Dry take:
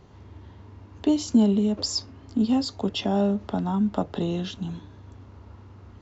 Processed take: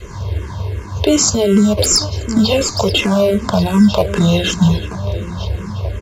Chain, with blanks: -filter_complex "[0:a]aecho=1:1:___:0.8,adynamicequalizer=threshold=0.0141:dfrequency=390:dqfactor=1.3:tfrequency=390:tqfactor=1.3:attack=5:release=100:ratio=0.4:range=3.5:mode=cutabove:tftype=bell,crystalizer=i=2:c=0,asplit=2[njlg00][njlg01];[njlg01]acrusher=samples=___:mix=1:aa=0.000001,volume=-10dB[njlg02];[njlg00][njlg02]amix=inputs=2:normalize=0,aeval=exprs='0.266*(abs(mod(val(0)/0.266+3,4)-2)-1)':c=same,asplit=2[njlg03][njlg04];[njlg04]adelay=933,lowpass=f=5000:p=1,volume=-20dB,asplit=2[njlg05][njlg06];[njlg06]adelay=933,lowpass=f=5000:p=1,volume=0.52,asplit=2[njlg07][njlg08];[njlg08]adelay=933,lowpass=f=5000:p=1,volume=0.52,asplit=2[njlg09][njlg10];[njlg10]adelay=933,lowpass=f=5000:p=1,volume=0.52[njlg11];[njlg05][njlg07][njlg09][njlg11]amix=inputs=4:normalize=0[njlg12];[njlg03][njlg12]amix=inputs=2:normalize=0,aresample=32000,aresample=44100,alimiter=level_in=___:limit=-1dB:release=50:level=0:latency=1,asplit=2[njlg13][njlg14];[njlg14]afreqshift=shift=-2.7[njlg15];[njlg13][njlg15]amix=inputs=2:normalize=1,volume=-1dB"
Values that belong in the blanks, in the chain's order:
1.9, 25, 21.5dB